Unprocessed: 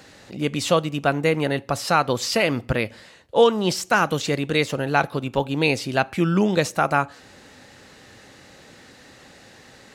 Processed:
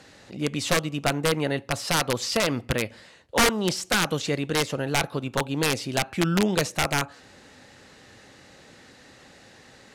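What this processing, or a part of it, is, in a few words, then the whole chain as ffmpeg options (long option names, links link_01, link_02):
overflowing digital effects unit: -af "aeval=exprs='(mod(3.35*val(0)+1,2)-1)/3.35':channel_layout=same,lowpass=12000,volume=-3dB"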